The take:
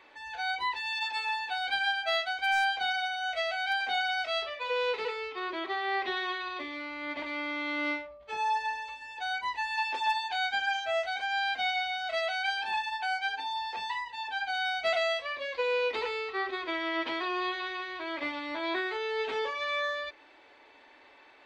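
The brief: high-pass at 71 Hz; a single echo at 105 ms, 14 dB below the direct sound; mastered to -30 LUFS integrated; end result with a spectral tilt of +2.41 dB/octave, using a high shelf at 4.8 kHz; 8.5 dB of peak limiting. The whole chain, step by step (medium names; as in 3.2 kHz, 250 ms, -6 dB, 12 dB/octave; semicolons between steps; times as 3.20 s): high-pass 71 Hz; treble shelf 4.8 kHz -9 dB; peak limiter -28 dBFS; delay 105 ms -14 dB; trim +5 dB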